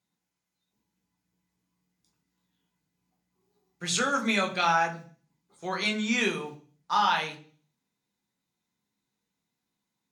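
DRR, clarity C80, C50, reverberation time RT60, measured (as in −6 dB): 1.0 dB, 17.5 dB, 13.5 dB, 0.45 s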